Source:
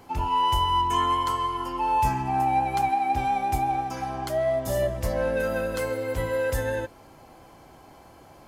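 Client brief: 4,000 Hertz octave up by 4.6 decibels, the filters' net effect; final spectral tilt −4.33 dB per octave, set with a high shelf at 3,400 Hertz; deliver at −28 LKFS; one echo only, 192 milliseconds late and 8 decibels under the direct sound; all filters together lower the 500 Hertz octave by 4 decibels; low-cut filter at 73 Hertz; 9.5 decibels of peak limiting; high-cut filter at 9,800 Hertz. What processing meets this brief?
high-pass filter 73 Hz
low-pass filter 9,800 Hz
parametric band 500 Hz −5 dB
high-shelf EQ 3,400 Hz +3.5 dB
parametric band 4,000 Hz +5 dB
brickwall limiter −22.5 dBFS
single-tap delay 192 ms −8 dB
level +1.5 dB

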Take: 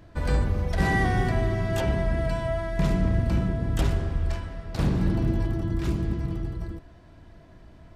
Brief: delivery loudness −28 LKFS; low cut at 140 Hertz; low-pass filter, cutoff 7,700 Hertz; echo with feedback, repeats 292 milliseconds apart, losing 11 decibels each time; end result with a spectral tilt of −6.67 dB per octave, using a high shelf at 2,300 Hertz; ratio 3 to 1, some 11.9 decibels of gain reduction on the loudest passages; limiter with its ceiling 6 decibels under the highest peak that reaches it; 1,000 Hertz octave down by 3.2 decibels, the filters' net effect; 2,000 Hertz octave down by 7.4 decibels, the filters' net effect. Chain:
high-pass filter 140 Hz
low-pass filter 7,700 Hz
parametric band 1,000 Hz −3 dB
parametric band 2,000 Hz −6 dB
high-shelf EQ 2,300 Hz −3.5 dB
downward compressor 3 to 1, threshold −40 dBFS
brickwall limiter −32.5 dBFS
repeating echo 292 ms, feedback 28%, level −11 dB
level +13.5 dB

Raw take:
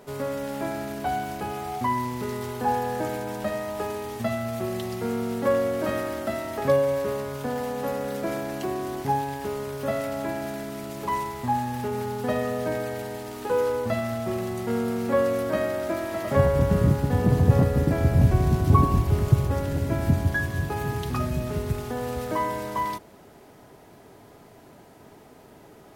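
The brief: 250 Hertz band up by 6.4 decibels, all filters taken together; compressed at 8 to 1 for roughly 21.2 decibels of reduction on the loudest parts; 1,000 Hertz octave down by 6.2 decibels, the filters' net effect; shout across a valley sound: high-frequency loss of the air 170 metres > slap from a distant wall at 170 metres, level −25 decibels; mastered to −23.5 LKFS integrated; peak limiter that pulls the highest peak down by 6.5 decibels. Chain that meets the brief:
parametric band 250 Hz +8.5 dB
parametric band 1,000 Hz −7.5 dB
downward compressor 8 to 1, threshold −34 dBFS
brickwall limiter −30.5 dBFS
high-frequency loss of the air 170 metres
slap from a distant wall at 170 metres, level −25 dB
level +16.5 dB

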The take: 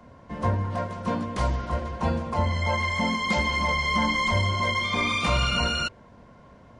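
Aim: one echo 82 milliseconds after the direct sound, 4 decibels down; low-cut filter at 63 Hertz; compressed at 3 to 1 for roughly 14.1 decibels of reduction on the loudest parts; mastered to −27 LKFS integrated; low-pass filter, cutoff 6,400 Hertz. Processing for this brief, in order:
high-pass filter 63 Hz
low-pass filter 6,400 Hz
downward compressor 3 to 1, threshold −40 dBFS
single-tap delay 82 ms −4 dB
level +9.5 dB

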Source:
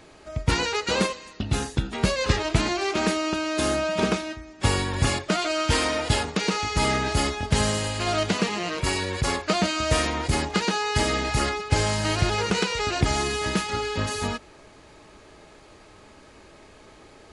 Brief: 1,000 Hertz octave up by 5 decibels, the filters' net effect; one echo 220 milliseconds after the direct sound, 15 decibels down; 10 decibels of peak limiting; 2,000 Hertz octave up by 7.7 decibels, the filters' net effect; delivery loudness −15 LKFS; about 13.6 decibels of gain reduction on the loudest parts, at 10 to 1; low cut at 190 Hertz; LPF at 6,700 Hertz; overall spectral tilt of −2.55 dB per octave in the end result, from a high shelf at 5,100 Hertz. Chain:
high-pass filter 190 Hz
low-pass filter 6,700 Hz
parametric band 1,000 Hz +4 dB
parametric band 2,000 Hz +7.5 dB
high-shelf EQ 5,100 Hz +5.5 dB
downward compressor 10 to 1, threshold −30 dBFS
brickwall limiter −24.5 dBFS
single-tap delay 220 ms −15 dB
level +19 dB

